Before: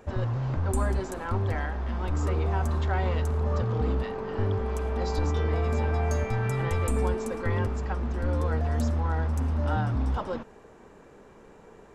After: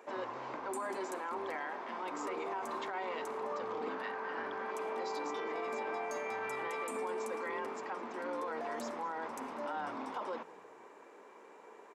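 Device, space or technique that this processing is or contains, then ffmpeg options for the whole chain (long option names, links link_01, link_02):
laptop speaker: -filter_complex "[0:a]highpass=frequency=300:width=0.5412,highpass=frequency=300:width=1.3066,equalizer=frequency=1000:width_type=o:width=0.49:gain=7,equalizer=frequency=2200:width_type=o:width=0.4:gain=6,alimiter=level_in=2dB:limit=-24dB:level=0:latency=1:release=19,volume=-2dB,asettb=1/sr,asplit=3[link_01][link_02][link_03];[link_01]atrim=end=3.894[link_04];[link_02]atrim=start=3.89:end=4.71,asetpts=PTS-STARTPTS,afade=type=in:duration=0.004:curve=qsin,afade=type=out:start_time=0.816:duration=0.004:curve=qsin,equalizer=frequency=400:width_type=o:width=0.33:gain=-8,equalizer=frequency=1600:width_type=o:width=0.33:gain=10,equalizer=frequency=8000:width_type=o:width=0.33:gain=-4[link_05];[link_03]atrim=start=4.706[link_06];[link_04][link_05]acrossfade=duration=0.004:curve1=hsin:curve2=qsin[link_07];[link_07][link_06]acrossfade=duration=0.004:curve1=qsin:curve2=hsin,asplit=4[link_08][link_09][link_10][link_11];[link_09]adelay=210,afreqshift=-46,volume=-19.5dB[link_12];[link_10]adelay=420,afreqshift=-92,volume=-29.7dB[link_13];[link_11]adelay=630,afreqshift=-138,volume=-39.8dB[link_14];[link_08][link_12][link_13][link_14]amix=inputs=4:normalize=0,volume=-4.5dB"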